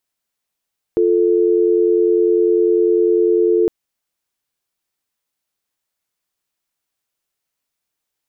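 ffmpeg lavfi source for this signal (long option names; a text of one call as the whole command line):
ffmpeg -f lavfi -i "aevalsrc='0.2*(sin(2*PI*350*t)+sin(2*PI*440*t))':duration=2.71:sample_rate=44100" out.wav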